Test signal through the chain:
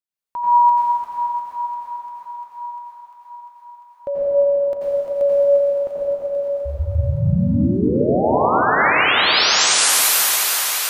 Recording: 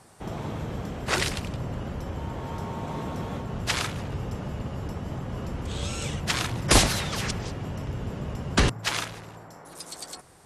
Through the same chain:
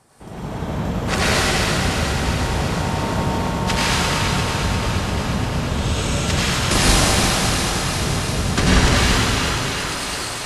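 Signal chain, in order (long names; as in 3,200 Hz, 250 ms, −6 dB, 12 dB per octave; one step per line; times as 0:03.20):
automatic gain control gain up to 4.5 dB
feedback echo with a high-pass in the loop 348 ms, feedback 80%, high-pass 330 Hz, level −8 dB
dense smooth reverb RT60 4.1 s, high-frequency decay 0.85×, pre-delay 75 ms, DRR −9 dB
level −3 dB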